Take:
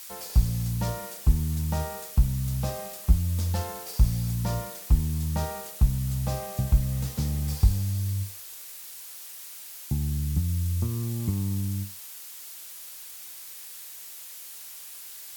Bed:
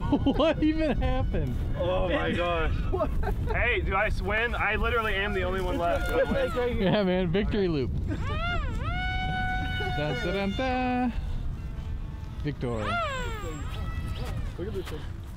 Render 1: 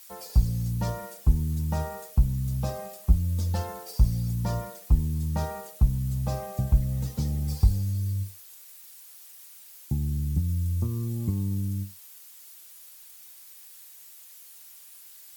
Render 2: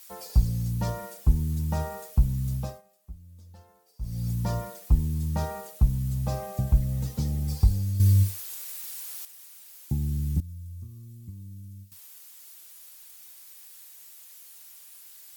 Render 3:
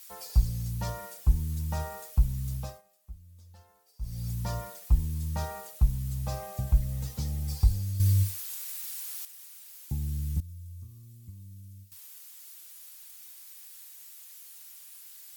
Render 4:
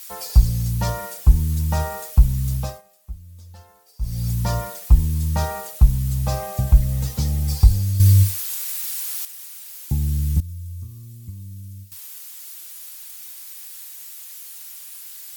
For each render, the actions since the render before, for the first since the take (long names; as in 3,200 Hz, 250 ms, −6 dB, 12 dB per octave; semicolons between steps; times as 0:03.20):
broadband denoise 9 dB, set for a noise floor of −43 dBFS
0:02.53–0:04.28: duck −22.5 dB, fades 0.29 s; 0:08.00–0:09.25: clip gain +10 dB; 0:10.40–0:11.92: guitar amp tone stack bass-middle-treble 6-0-2
parametric band 260 Hz −9 dB 2.6 octaves
level +10.5 dB; brickwall limiter −2 dBFS, peak gain reduction 1 dB